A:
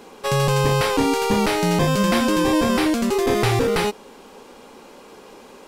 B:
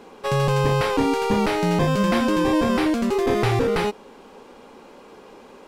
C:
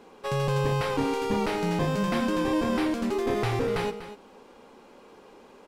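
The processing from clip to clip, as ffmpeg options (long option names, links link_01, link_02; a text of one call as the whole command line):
ffmpeg -i in.wav -af "highshelf=frequency=4400:gain=-9.5,volume=-1dB" out.wav
ffmpeg -i in.wav -af "aecho=1:1:99|244:0.168|0.237,volume=-6.5dB" out.wav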